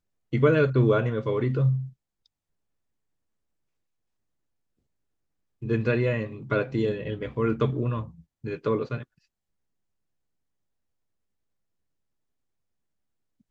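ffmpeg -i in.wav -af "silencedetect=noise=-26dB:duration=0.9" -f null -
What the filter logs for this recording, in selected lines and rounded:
silence_start: 1.79
silence_end: 5.64 | silence_duration: 3.84
silence_start: 8.96
silence_end: 13.51 | silence_duration: 4.54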